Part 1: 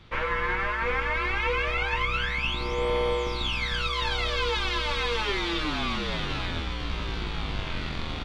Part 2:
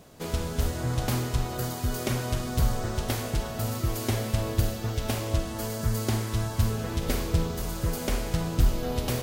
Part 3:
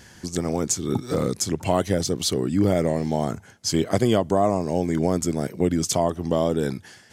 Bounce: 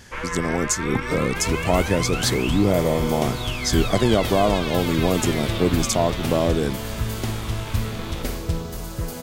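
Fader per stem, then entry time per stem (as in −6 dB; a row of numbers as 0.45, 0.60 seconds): −2.0, 0.0, +1.0 decibels; 0.00, 1.15, 0.00 seconds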